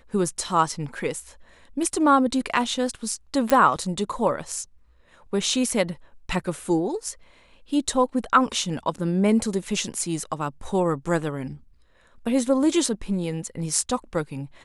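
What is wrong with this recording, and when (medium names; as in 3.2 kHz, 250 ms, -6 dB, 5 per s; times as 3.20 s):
3.50 s: pop -6 dBFS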